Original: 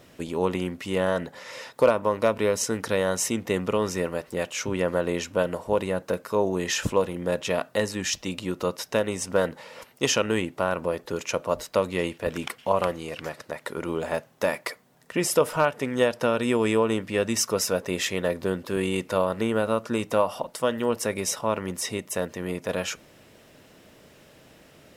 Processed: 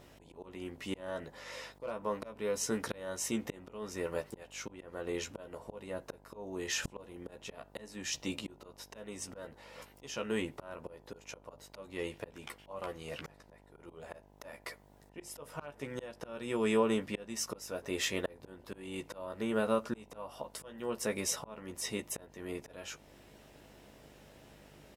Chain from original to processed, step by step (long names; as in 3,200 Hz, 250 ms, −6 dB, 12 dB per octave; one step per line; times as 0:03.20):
double-tracking delay 14 ms −5.5 dB
volume swells 506 ms
hum with harmonics 50 Hz, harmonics 20, −55 dBFS −3 dB per octave
level −7 dB